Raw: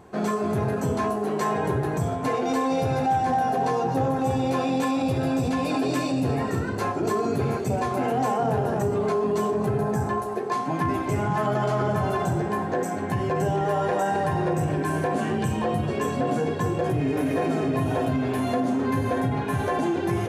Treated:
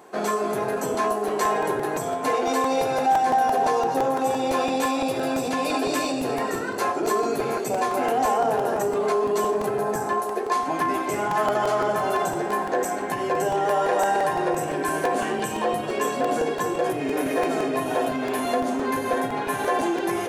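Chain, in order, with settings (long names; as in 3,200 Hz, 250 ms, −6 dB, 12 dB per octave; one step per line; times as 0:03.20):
high-pass filter 360 Hz 12 dB per octave
high-shelf EQ 8,000 Hz +6.5 dB
regular buffer underruns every 0.17 s, samples 128, repeat, from 0:00.77
level +3.5 dB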